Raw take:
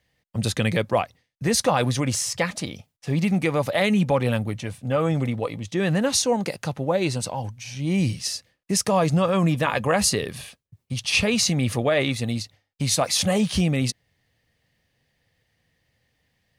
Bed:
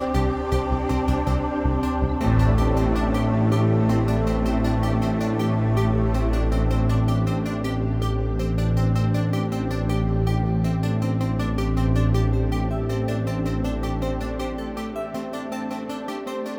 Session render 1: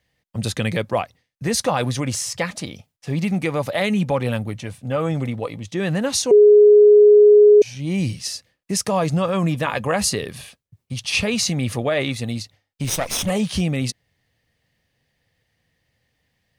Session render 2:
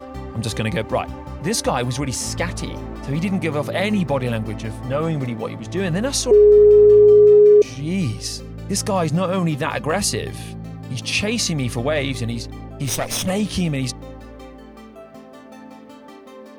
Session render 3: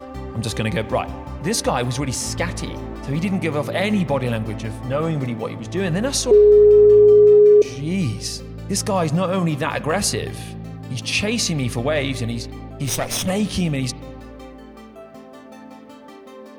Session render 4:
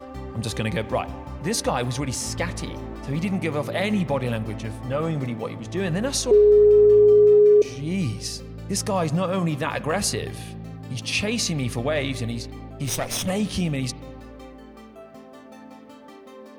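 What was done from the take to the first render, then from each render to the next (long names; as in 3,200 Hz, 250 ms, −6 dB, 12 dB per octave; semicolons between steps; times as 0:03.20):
0:06.31–0:07.62: beep over 417 Hz −6.5 dBFS; 0:12.84–0:13.30: lower of the sound and its delayed copy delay 0.33 ms
mix in bed −11 dB
spring reverb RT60 1.4 s, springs 33/46 ms, chirp 50 ms, DRR 16.5 dB
level −3.5 dB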